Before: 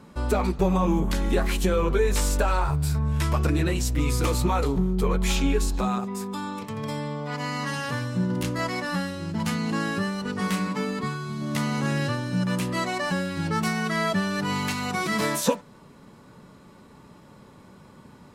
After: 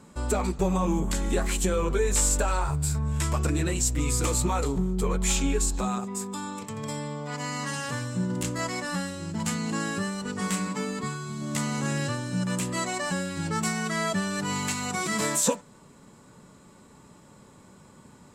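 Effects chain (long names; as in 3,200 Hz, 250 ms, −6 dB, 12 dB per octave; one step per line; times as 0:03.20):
parametric band 7,600 Hz +14 dB 0.46 octaves
level −3 dB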